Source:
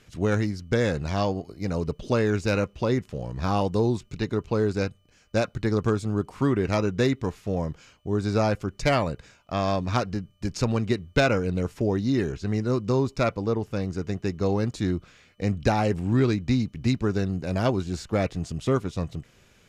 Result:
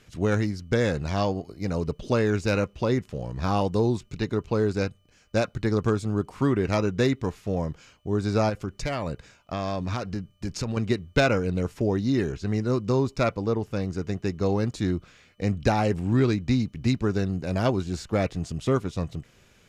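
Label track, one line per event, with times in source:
8.490000	10.770000	downward compressor, threshold −24 dBFS

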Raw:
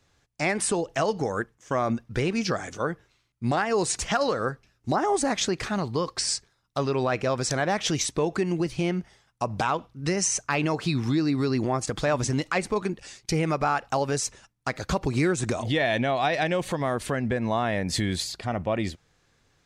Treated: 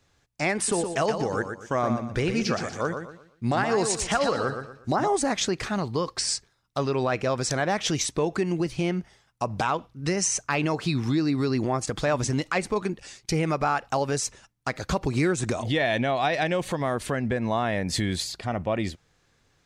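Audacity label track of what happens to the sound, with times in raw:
0.560000	5.080000	repeating echo 120 ms, feedback 33%, level −7 dB

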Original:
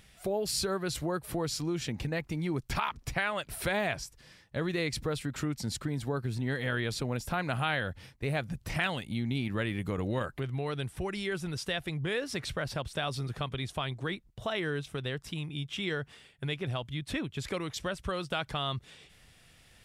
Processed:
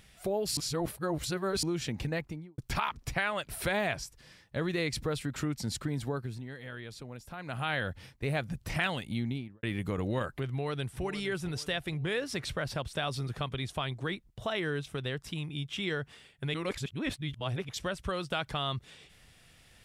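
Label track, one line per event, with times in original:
0.570000	1.630000	reverse
2.130000	2.580000	fade out and dull
6.030000	7.820000	duck −11.5 dB, fades 0.45 s
9.180000	9.630000	fade out and dull
10.470000	11.030000	delay throw 460 ms, feedback 45%, level −13 dB
16.540000	17.690000	reverse

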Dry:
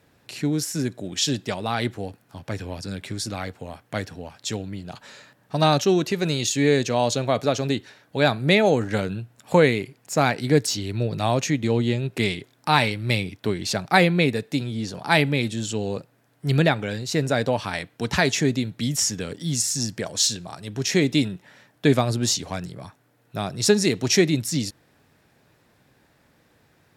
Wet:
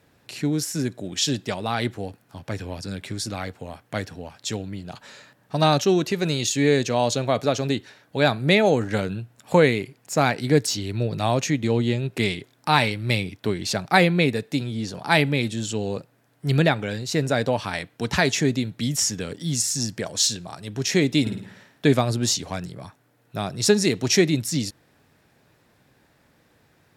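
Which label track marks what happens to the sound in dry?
21.210000	21.860000	flutter between parallel walls apart 9.2 metres, dies away in 0.57 s

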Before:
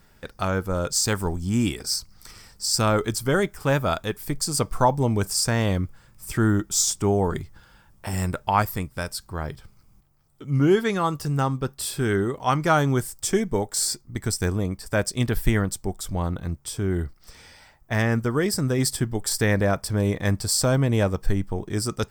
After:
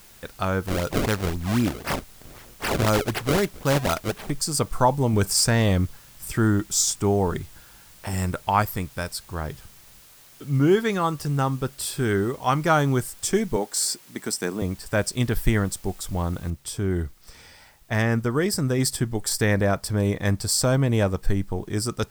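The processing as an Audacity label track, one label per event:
0.670000	4.300000	sample-and-hold swept by an LFO 29×, swing 160% 3.9 Hz
5.130000	6.280000	leveller curve on the samples passes 1
13.560000	14.620000	high-pass filter 190 Hz 24 dB per octave
16.500000	16.500000	noise floor change −51 dB −61 dB

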